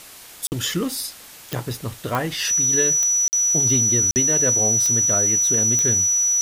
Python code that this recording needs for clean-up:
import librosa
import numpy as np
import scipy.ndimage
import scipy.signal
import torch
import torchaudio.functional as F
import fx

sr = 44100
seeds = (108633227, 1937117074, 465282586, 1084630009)

y = fx.fix_declick_ar(x, sr, threshold=10.0)
y = fx.notch(y, sr, hz=5900.0, q=30.0)
y = fx.fix_interpolate(y, sr, at_s=(0.47, 3.28, 4.11), length_ms=49.0)
y = fx.noise_reduce(y, sr, print_start_s=1.03, print_end_s=1.53, reduce_db=25.0)